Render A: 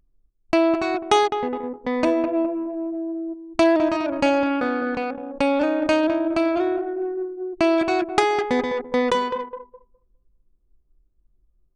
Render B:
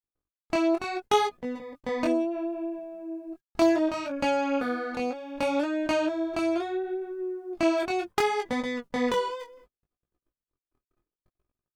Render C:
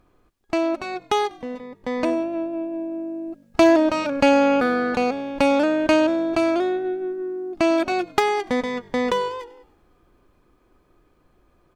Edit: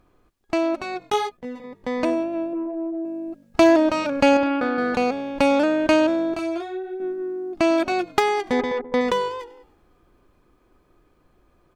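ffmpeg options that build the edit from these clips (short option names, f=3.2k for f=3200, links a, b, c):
-filter_complex "[1:a]asplit=2[a][b];[0:a]asplit=3[c][d][e];[2:a]asplit=6[f][g][h][i][j][k];[f]atrim=end=1.102[l];[a]atrim=start=1.098:end=1.642[m];[g]atrim=start=1.638:end=2.532[n];[c]atrim=start=2.528:end=3.052[o];[h]atrim=start=3.048:end=4.372[p];[d]atrim=start=4.368:end=4.782[q];[i]atrim=start=4.778:end=6.342[r];[b]atrim=start=6.338:end=7.002[s];[j]atrim=start=6.998:end=8.522[t];[e]atrim=start=8.518:end=9.012[u];[k]atrim=start=9.008[v];[l][m]acrossfade=d=0.004:c1=hsin:c2=hsin[w];[w][n]acrossfade=d=0.004:c1=hsin:c2=hsin[x];[x][o]acrossfade=d=0.004:c1=hsin:c2=hsin[y];[y][p]acrossfade=d=0.004:c1=hsin:c2=hsin[z];[z][q]acrossfade=d=0.004:c1=hsin:c2=hsin[aa];[aa][r]acrossfade=d=0.004:c1=hsin:c2=hsin[ab];[ab][s]acrossfade=d=0.004:c1=hsin:c2=hsin[ac];[ac][t]acrossfade=d=0.004:c1=hsin:c2=hsin[ad];[ad][u]acrossfade=d=0.004:c1=hsin:c2=hsin[ae];[ae][v]acrossfade=d=0.004:c1=hsin:c2=hsin"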